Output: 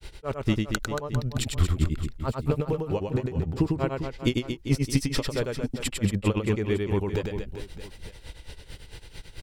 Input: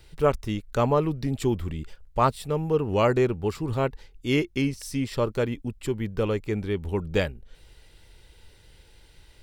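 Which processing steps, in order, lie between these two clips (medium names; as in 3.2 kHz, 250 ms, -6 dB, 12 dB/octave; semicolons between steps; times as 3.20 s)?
compressor with a negative ratio -30 dBFS, ratio -1; granulator 125 ms, grains 4.5 per s, spray 15 ms, pitch spread up and down by 0 st; reverse bouncing-ball echo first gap 100 ms, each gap 1.3×, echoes 5; trim +9 dB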